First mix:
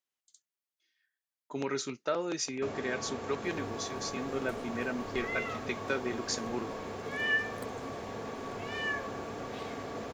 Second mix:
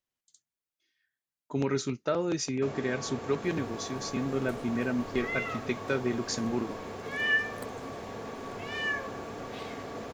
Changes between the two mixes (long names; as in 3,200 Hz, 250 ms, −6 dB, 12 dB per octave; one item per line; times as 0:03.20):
speech: remove high-pass filter 520 Hz 6 dB per octave
second sound +3.0 dB